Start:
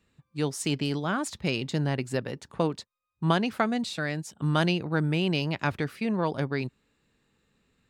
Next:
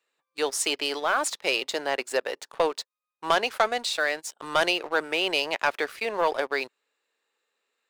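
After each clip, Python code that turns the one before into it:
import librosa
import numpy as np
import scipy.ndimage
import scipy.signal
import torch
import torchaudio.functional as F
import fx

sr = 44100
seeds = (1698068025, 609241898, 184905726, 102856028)

y = scipy.signal.sosfilt(scipy.signal.butter(4, 460.0, 'highpass', fs=sr, output='sos'), x)
y = fx.leveller(y, sr, passes=2)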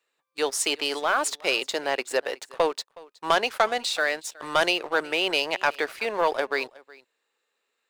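y = x + 10.0 ** (-22.5 / 20.0) * np.pad(x, (int(368 * sr / 1000.0), 0))[:len(x)]
y = y * librosa.db_to_amplitude(1.0)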